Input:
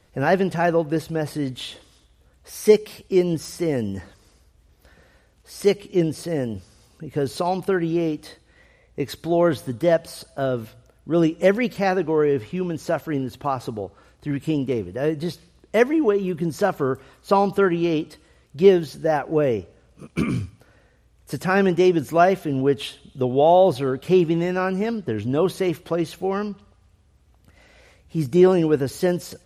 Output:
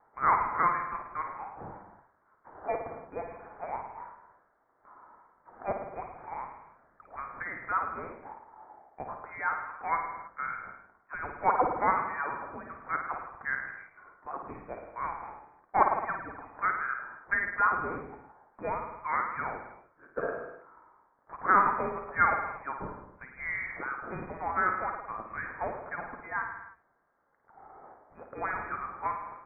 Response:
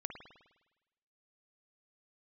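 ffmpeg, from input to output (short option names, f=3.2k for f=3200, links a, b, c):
-filter_complex "[0:a]highpass=f=1.5k:w=0.5412,highpass=f=1.5k:w=1.3066[a];[1:a]atrim=start_sample=2205,afade=t=out:st=0.39:d=0.01,atrim=end_sample=17640[b];[a][b]afir=irnorm=-1:irlink=0,lowpass=f=2.4k:t=q:w=0.5098,lowpass=f=2.4k:t=q:w=0.6013,lowpass=f=2.4k:t=q:w=0.9,lowpass=f=2.4k:t=q:w=2.563,afreqshift=-2800,volume=8.5dB"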